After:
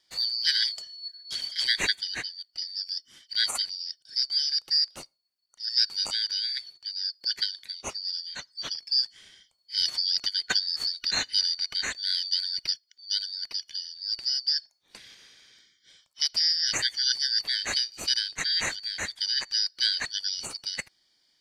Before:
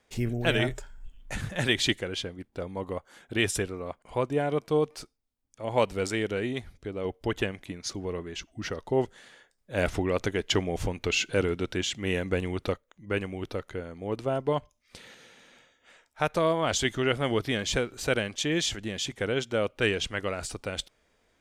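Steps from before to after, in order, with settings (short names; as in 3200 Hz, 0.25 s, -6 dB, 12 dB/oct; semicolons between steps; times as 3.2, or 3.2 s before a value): four-band scrambler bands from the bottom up 4321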